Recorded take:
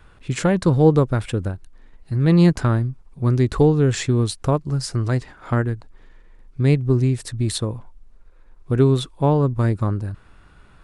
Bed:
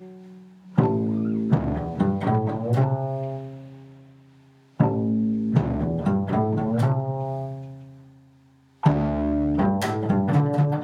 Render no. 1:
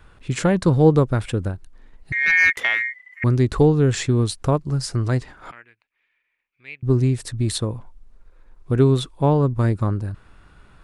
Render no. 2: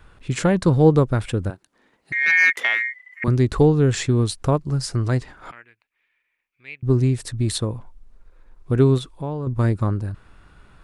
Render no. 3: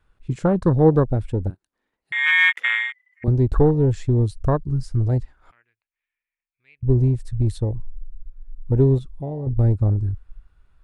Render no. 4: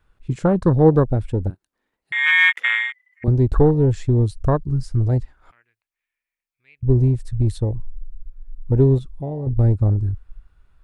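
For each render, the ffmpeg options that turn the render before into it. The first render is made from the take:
-filter_complex "[0:a]asettb=1/sr,asplit=3[a][b][c];[a]atrim=end=2.124[d];[b]atrim=start=2.12:end=3.24,asetpts=PTS-STARTPTS,afade=t=in:d=0.004:c=qsin,afade=t=out:st=1.116:d=0.004:c=qsin,aeval=exprs='val(0)*sin(2*PI*2000*n/s)':c=same[e];[c]atrim=start=3.236[f];[d][e]acrossfade=d=0.004:c1=hsin:c2=qsin[g];[g][f]acrossfade=d=0.004:c1=qsin:c2=hsin,asettb=1/sr,asplit=3[h][i][j];[h]atrim=end=5.514[k];[i]atrim=start=5.51:end=6.83,asetpts=PTS-STARTPTS,afade=t=in:d=0.004:c=qsin,afade=t=out:st=1.316:d=0.004:c=qsin,bandpass=f=2.4k:t=q:w=5.9[l];[j]atrim=start=6.826[m];[k][l]acrossfade=d=0.004:c1=hsin:c2=qsin[n];[n][m]acrossfade=d=0.004:c1=qsin:c2=hsin"
-filter_complex "[0:a]asettb=1/sr,asplit=3[a][b][c];[a]atrim=end=1.504[d];[b]atrim=start=1.5:end=3.28,asetpts=PTS-STARTPTS,afade=t=in:d=0.004:c=qsin,afade=t=out:st=1.776:d=0.004:c=qsin,highpass=230[e];[c]atrim=start=3.276[f];[d][e]acrossfade=d=0.004:c1=hsin:c2=qsin[g];[g][f]acrossfade=d=0.004:c1=qsin:c2=hsin,asettb=1/sr,asplit=3[h][i][j];[h]atrim=end=8.984[k];[i]atrim=start=8.98:end=9.47,asetpts=PTS-STARTPTS,afade=t=in:d=0.004:c=qsin,afade=t=out:st=0.486:d=0.004:c=qsin,acompressor=threshold=-32dB:ratio=2:attack=3.2:release=140:knee=1:detection=peak[l];[j]atrim=start=9.466[m];[k][l]acrossfade=d=0.004:c1=hsin:c2=qsin[n];[n][m]acrossfade=d=0.004:c1=qsin:c2=hsin"
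-af "afwtdn=0.0631,asubboost=boost=4.5:cutoff=82"
-af "volume=1.5dB"

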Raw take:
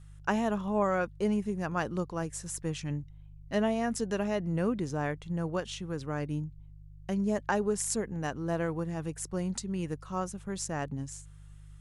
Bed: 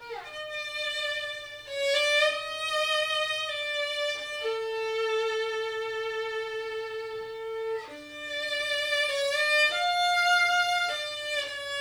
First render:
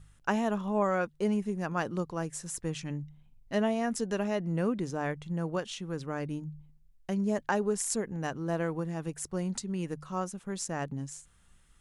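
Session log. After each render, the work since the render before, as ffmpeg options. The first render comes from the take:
-af "bandreject=f=50:t=h:w=4,bandreject=f=100:t=h:w=4,bandreject=f=150:t=h:w=4"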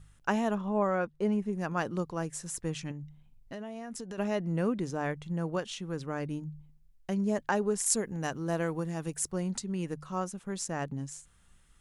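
-filter_complex "[0:a]asettb=1/sr,asplit=3[a][b][c];[a]atrim=end=0.554[d];[b]atrim=start=0.55:end=1.53,asetpts=PTS-STARTPTS,afade=t=in:d=0.004:c=qsin,afade=t=out:st=0.976:d=0.004:c=qsin,highshelf=f=3.1k:g=-9.5[e];[c]atrim=start=1.526[f];[d][e]acrossfade=d=0.004:c1=hsin:c2=qsin[g];[g][f]acrossfade=d=0.004:c1=qsin:c2=hsin,asettb=1/sr,asplit=3[h][i][j];[h]atrim=end=2.914[k];[i]atrim=start=2.91:end=4.18,asetpts=PTS-STARTPTS,afade=t=in:d=0.004:c=qsin,afade=t=out:st=1.266:d=0.004:c=qsin,acompressor=threshold=-37dB:ratio=6:attack=3.2:release=140:knee=1:detection=peak[l];[j]atrim=start=4.176[m];[k][l]acrossfade=d=0.004:c1=hsin:c2=qsin[n];[n][m]acrossfade=d=0.004:c1=qsin:c2=hsin,asettb=1/sr,asplit=3[o][p][q];[o]atrim=end=7.864[r];[p]atrim=start=7.86:end=9.32,asetpts=PTS-STARTPTS,afade=t=in:d=0.004:c=qsin,afade=t=out:st=1.456:d=0.004:c=qsin,highshelf=f=4.4k:g=7.5[s];[q]atrim=start=9.316[t];[r][s]acrossfade=d=0.004:c1=hsin:c2=qsin[u];[u][t]acrossfade=d=0.004:c1=qsin:c2=hsin"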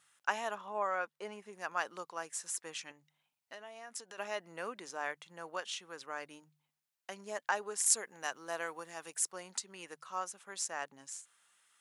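-af "highpass=870"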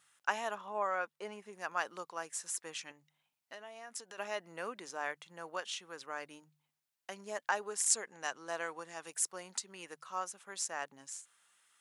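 -filter_complex "[0:a]asettb=1/sr,asplit=3[a][b][c];[a]atrim=end=7.854[d];[b]atrim=start=7.85:end=9.06,asetpts=PTS-STARTPTS,afade=t=in:d=0.004:c=qsin,afade=t=out:st=1.206:d=0.004:c=qsin,lowpass=f=9.3k:w=0.5412,lowpass=f=9.3k:w=1.3066[e];[c]atrim=start=9.056[f];[d][e]acrossfade=d=0.004:c1=hsin:c2=qsin[g];[g][f]acrossfade=d=0.004:c1=qsin:c2=hsin"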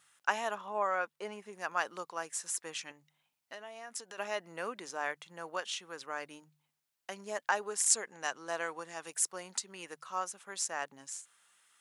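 -af "volume=2.5dB"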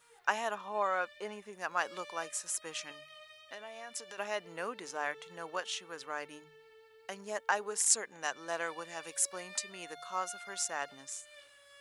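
-filter_complex "[1:a]volume=-25.5dB[a];[0:a][a]amix=inputs=2:normalize=0"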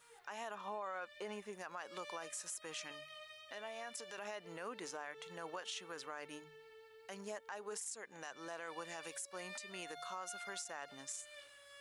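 -af "acompressor=threshold=-36dB:ratio=10,alimiter=level_in=10.5dB:limit=-24dB:level=0:latency=1:release=40,volume=-10.5dB"

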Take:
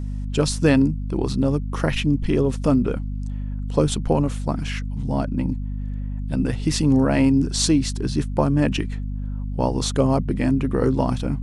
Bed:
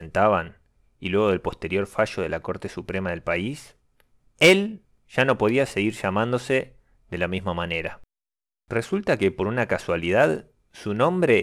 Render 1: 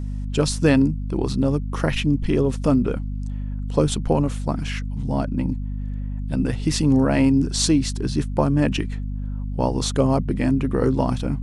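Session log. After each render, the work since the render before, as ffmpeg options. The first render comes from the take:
-af anull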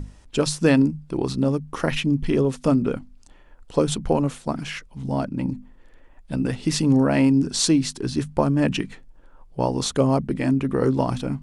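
-af "bandreject=f=50:t=h:w=6,bandreject=f=100:t=h:w=6,bandreject=f=150:t=h:w=6,bandreject=f=200:t=h:w=6,bandreject=f=250:t=h:w=6"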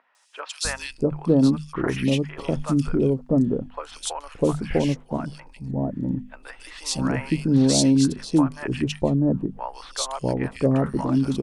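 -filter_complex "[0:a]acrossover=split=780|2400[a][b][c];[c]adelay=150[d];[a]adelay=650[e];[e][b][d]amix=inputs=3:normalize=0"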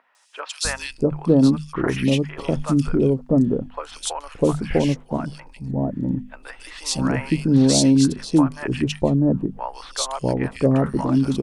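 -af "volume=2.5dB,alimiter=limit=-3dB:level=0:latency=1"

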